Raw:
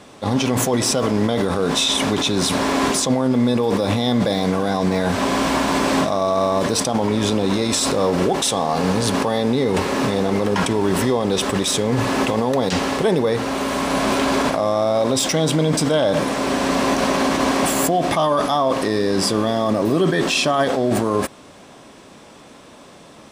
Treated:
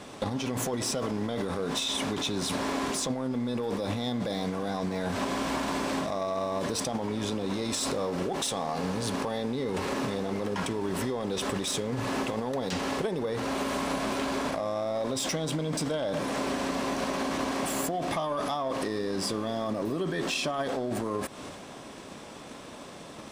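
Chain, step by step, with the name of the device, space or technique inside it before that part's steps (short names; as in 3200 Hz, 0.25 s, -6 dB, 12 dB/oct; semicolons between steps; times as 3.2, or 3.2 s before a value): drum-bus smash (transient shaper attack +9 dB, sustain +5 dB; compressor 12:1, threshold -24 dBFS, peak gain reduction 15 dB; soft clip -19 dBFS, distortion -20 dB); gain -1.5 dB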